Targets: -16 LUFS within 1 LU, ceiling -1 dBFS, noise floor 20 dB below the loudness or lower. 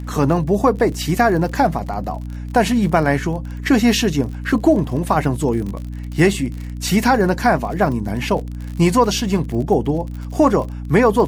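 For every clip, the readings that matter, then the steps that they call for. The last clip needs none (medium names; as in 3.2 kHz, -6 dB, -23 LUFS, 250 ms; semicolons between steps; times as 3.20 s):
tick rate 45 per s; hum 60 Hz; highest harmonic 300 Hz; hum level -25 dBFS; loudness -18.0 LUFS; peak level -1.5 dBFS; loudness target -16.0 LUFS
-> de-click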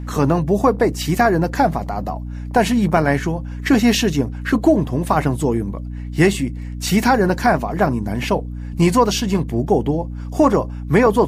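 tick rate 0.089 per s; hum 60 Hz; highest harmonic 300 Hz; hum level -25 dBFS
-> hum notches 60/120/180/240/300 Hz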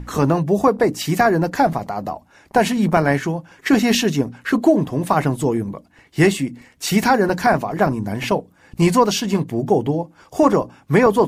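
hum not found; loudness -19.0 LUFS; peak level -2.5 dBFS; loudness target -16.0 LUFS
-> trim +3 dB; peak limiter -1 dBFS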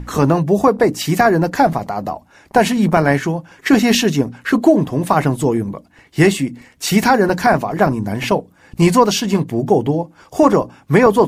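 loudness -16.0 LUFS; peak level -1.0 dBFS; noise floor -50 dBFS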